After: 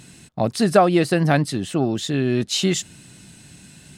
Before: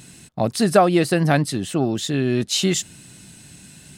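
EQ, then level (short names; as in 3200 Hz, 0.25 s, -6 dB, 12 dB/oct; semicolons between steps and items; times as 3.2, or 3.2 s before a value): high shelf 9100 Hz -7 dB; 0.0 dB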